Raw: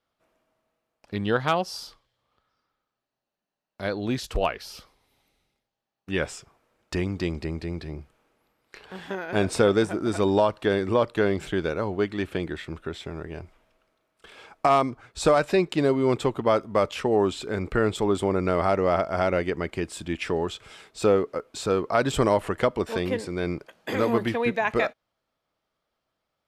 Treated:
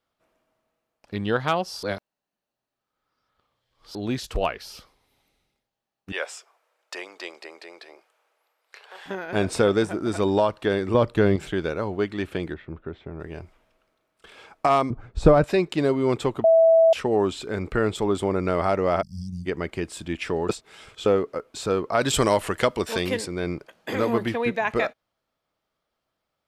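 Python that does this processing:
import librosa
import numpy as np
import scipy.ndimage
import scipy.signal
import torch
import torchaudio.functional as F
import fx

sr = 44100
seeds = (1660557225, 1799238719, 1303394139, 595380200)

y = fx.highpass(x, sr, hz=520.0, slope=24, at=(6.12, 9.06))
y = fx.low_shelf(y, sr, hz=230.0, db=11.0, at=(10.94, 11.36))
y = fx.spacing_loss(y, sr, db_at_10k=43, at=(12.54, 13.2))
y = fx.tilt_eq(y, sr, slope=-4.0, at=(14.9, 15.44))
y = fx.cheby1_bandstop(y, sr, low_hz=200.0, high_hz=5000.0, order=4, at=(19.01, 19.45), fade=0.02)
y = fx.high_shelf(y, sr, hz=2300.0, db=10.5, at=(22.01, 23.26))
y = fx.edit(y, sr, fx.reverse_span(start_s=1.83, length_s=2.12),
    fx.bleep(start_s=16.44, length_s=0.49, hz=655.0, db=-12.0),
    fx.reverse_span(start_s=20.49, length_s=0.57), tone=tone)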